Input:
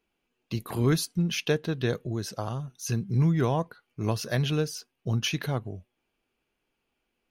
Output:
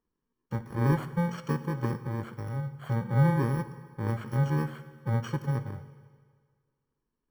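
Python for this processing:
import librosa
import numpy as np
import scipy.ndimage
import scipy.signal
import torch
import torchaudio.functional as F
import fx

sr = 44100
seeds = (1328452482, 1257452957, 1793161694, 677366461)

y = fx.bit_reversed(x, sr, seeds[0], block=64)
y = scipy.signal.savgol_filter(y, 41, 4, mode='constant')
y = fx.rev_fdn(y, sr, rt60_s=1.8, lf_ratio=0.85, hf_ratio=0.95, size_ms=42.0, drr_db=10.5)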